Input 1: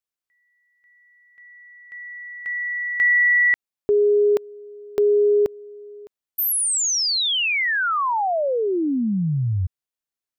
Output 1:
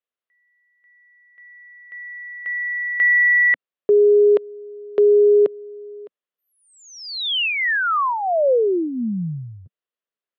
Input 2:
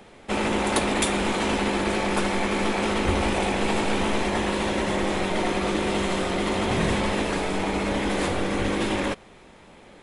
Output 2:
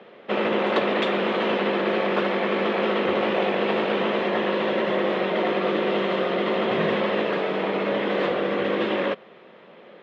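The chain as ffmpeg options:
ffmpeg -i in.wav -af "highpass=frequency=190:width=0.5412,highpass=frequency=190:width=1.3066,equalizer=frequency=200:width_type=q:width=4:gain=-3,equalizer=frequency=280:width_type=q:width=4:gain=-10,equalizer=frequency=520:width_type=q:width=4:gain=3,equalizer=frequency=850:width_type=q:width=4:gain=-8,equalizer=frequency=1500:width_type=q:width=4:gain=-3,equalizer=frequency=2300:width_type=q:width=4:gain=-6,lowpass=frequency=3100:width=0.5412,lowpass=frequency=3100:width=1.3066,volume=4.5dB" out.wav

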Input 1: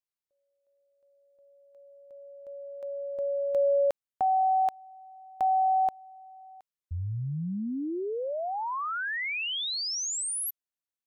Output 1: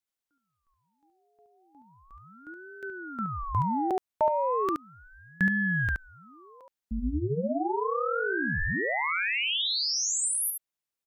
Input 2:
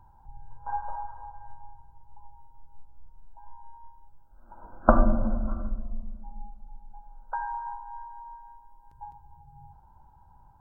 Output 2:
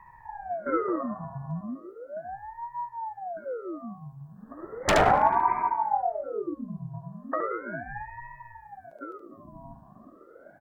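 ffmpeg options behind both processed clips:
ffmpeg -i in.wav -filter_complex "[0:a]aeval=exprs='0.841*(cos(1*acos(clip(val(0)/0.841,-1,1)))-cos(1*PI/2))+0.00668*(cos(3*acos(clip(val(0)/0.841,-1,1)))-cos(3*PI/2))+0.0168*(cos(5*acos(clip(val(0)/0.841,-1,1)))-cos(5*PI/2))+0.0335*(cos(7*acos(clip(val(0)/0.841,-1,1)))-cos(7*PI/2))':channel_layout=same,aeval=exprs='0.112*(abs(mod(val(0)/0.112+3,4)-2)-1)':channel_layout=same,asplit=2[link_01][link_02];[link_02]aecho=0:1:72:0.562[link_03];[link_01][link_03]amix=inputs=2:normalize=0,aeval=exprs='val(0)*sin(2*PI*550*n/s+550*0.75/0.36*sin(2*PI*0.36*n/s))':channel_layout=same,volume=7dB" out.wav

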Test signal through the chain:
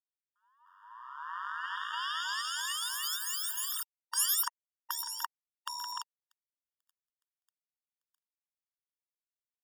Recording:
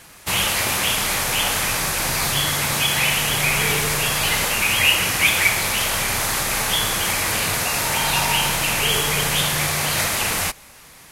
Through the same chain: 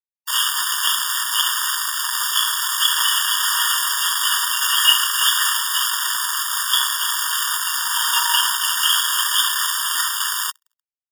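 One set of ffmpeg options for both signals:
ffmpeg -i in.wav -filter_complex "[0:a]asplit=8[link_01][link_02][link_03][link_04][link_05][link_06][link_07][link_08];[link_02]adelay=298,afreqshift=-36,volume=-11.5dB[link_09];[link_03]adelay=596,afreqshift=-72,volume=-16.1dB[link_10];[link_04]adelay=894,afreqshift=-108,volume=-20.7dB[link_11];[link_05]adelay=1192,afreqshift=-144,volume=-25.2dB[link_12];[link_06]adelay=1490,afreqshift=-180,volume=-29.8dB[link_13];[link_07]adelay=1788,afreqshift=-216,volume=-34.4dB[link_14];[link_08]adelay=2086,afreqshift=-252,volume=-39dB[link_15];[link_01][link_09][link_10][link_11][link_12][link_13][link_14][link_15]amix=inputs=8:normalize=0,acrusher=bits=2:mix=0:aa=0.5,afftfilt=real='re*eq(mod(floor(b*sr/1024/930),2),1)':imag='im*eq(mod(floor(b*sr/1024/930),2),1)':win_size=1024:overlap=0.75,volume=5dB" out.wav

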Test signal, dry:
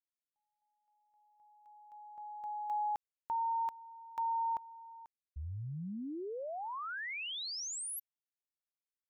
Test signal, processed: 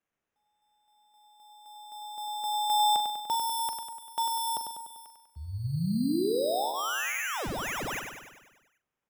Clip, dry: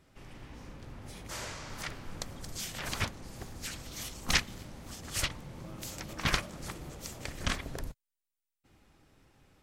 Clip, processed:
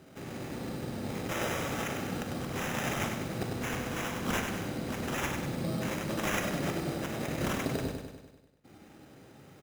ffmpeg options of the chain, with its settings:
ffmpeg -i in.wav -filter_complex "[0:a]highpass=150,bandreject=frequency=1000:width=5.5,acontrast=83,aeval=exprs='(mod(5.96*val(0)+1,2)-1)/5.96':channel_layout=same,alimiter=level_in=0.5dB:limit=-24dB:level=0:latency=1:release=82,volume=-0.5dB,tiltshelf=frequency=1200:gain=4,acrusher=samples=10:mix=1:aa=0.000001,asplit=2[link_01][link_02];[link_02]adelay=42,volume=-11.5dB[link_03];[link_01][link_03]amix=inputs=2:normalize=0,asplit=2[link_04][link_05];[link_05]aecho=0:1:98|196|294|392|490|588|686|784:0.501|0.291|0.169|0.0978|0.0567|0.0329|0.0191|0.0111[link_06];[link_04][link_06]amix=inputs=2:normalize=0,volume=2dB" out.wav

